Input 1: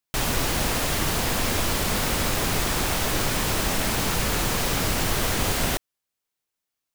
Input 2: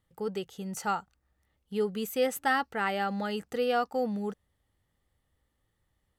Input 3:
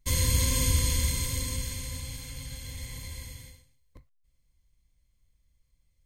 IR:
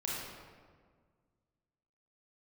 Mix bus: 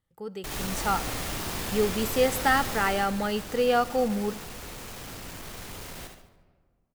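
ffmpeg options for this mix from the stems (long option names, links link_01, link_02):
-filter_complex "[0:a]asoftclip=type=tanh:threshold=-27.5dB,adelay=300,volume=-1.5dB,afade=type=out:start_time=2.64:duration=0.43:silence=0.266073,asplit=3[link_01][link_02][link_03];[link_02]volume=-11dB[link_04];[link_03]volume=-5.5dB[link_05];[1:a]dynaudnorm=framelen=480:gausssize=3:maxgain=9dB,volume=-5.5dB,asplit=2[link_06][link_07];[link_07]volume=-18.5dB[link_08];[link_01]alimiter=level_in=12.5dB:limit=-24dB:level=0:latency=1,volume=-12.5dB,volume=0dB[link_09];[3:a]atrim=start_sample=2205[link_10];[link_04][link_08]amix=inputs=2:normalize=0[link_11];[link_11][link_10]afir=irnorm=-1:irlink=0[link_12];[link_05]aecho=0:1:72|144|216|288|360|432:1|0.4|0.16|0.064|0.0256|0.0102[link_13];[link_06][link_09][link_12][link_13]amix=inputs=4:normalize=0"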